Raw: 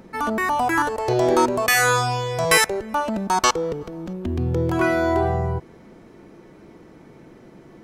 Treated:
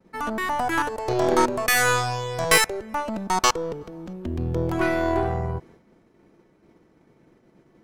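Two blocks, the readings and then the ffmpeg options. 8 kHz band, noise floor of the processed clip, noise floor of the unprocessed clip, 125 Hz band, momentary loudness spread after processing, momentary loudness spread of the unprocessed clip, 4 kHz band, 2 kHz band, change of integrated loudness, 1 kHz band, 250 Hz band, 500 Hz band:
-1.5 dB, -60 dBFS, -48 dBFS, -4.0 dB, 13 LU, 11 LU, -1.0 dB, -2.5 dB, -2.5 dB, -3.0 dB, -3.0 dB, -3.0 dB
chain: -af "aeval=exprs='0.668*(cos(1*acos(clip(val(0)/0.668,-1,1)))-cos(1*PI/2))+0.106*(cos(3*acos(clip(val(0)/0.668,-1,1)))-cos(3*PI/2))+0.00422*(cos(5*acos(clip(val(0)/0.668,-1,1)))-cos(5*PI/2))+0.0299*(cos(6*acos(clip(val(0)/0.668,-1,1)))-cos(6*PI/2))+0.00944*(cos(7*acos(clip(val(0)/0.668,-1,1)))-cos(7*PI/2))':c=same,agate=range=0.0224:threshold=0.00501:ratio=3:detection=peak,volume=1.26"

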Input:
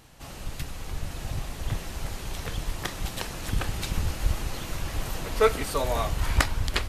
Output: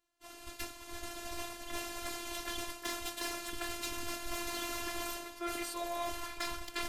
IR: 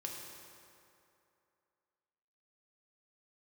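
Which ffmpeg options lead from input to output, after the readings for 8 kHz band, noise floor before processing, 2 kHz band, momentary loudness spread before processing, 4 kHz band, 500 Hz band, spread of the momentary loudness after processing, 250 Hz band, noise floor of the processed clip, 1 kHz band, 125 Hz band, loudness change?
-4.0 dB, -40 dBFS, -7.0 dB, 13 LU, -5.0 dB, -12.5 dB, 7 LU, -6.5 dB, -52 dBFS, -7.5 dB, -25.5 dB, -9.0 dB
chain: -af "highpass=f=230:p=1,agate=range=0.0224:threshold=0.02:ratio=3:detection=peak,areverse,acompressor=threshold=0.0112:ratio=10,areverse,asoftclip=type=tanh:threshold=0.0168,afftfilt=real='hypot(re,im)*cos(PI*b)':imag='0':win_size=512:overlap=0.75,volume=2.99"

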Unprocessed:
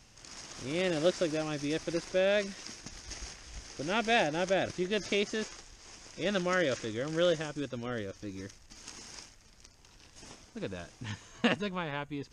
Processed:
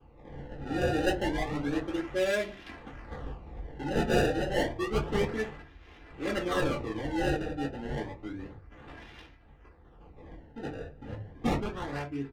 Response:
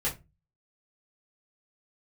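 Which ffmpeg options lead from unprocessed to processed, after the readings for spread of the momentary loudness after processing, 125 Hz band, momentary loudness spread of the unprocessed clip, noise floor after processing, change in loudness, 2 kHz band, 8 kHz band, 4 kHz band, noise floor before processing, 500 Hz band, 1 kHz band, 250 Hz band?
20 LU, +4.5 dB, 19 LU, -55 dBFS, +0.5 dB, -1.0 dB, -6.0 dB, -4.0 dB, -58 dBFS, 0.0 dB, +2.0 dB, +2.5 dB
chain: -filter_complex "[0:a]highpass=55,aecho=1:1:3:0.83,acrusher=samples=23:mix=1:aa=0.000001:lfo=1:lforange=36.8:lforate=0.3[s0];[1:a]atrim=start_sample=2205,asetrate=43659,aresample=44100[s1];[s0][s1]afir=irnorm=-1:irlink=0,adynamicsmooth=sensitivity=4:basefreq=2100,volume=0.422"

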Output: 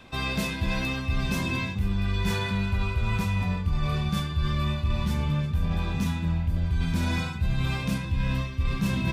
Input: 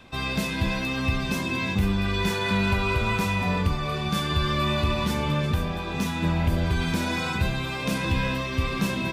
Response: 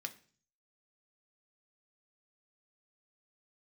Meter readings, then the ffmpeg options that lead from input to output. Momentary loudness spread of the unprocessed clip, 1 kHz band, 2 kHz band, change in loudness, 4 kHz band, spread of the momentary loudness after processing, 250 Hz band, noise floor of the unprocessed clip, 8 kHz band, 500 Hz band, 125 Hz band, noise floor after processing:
3 LU, -6.5 dB, -5.0 dB, -2.0 dB, -5.0 dB, 2 LU, -3.0 dB, -30 dBFS, -4.0 dB, -7.5 dB, +0.5 dB, -33 dBFS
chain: -af "asubboost=boost=4.5:cutoff=170,areverse,acompressor=threshold=0.0794:ratio=10,areverse"

